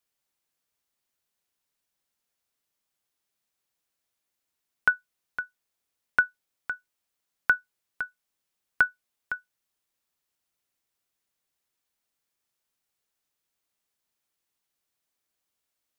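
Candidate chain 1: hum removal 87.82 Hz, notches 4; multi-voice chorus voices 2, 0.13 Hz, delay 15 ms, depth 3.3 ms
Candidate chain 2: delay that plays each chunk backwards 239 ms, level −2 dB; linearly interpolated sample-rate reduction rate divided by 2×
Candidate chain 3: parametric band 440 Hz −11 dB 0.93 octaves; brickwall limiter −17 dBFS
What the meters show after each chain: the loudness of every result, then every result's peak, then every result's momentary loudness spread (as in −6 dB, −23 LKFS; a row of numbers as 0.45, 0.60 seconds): −30.5, −28.0, −35.5 LKFS; −11.5, −9.0, −17.0 dBFS; 16, 16, 7 LU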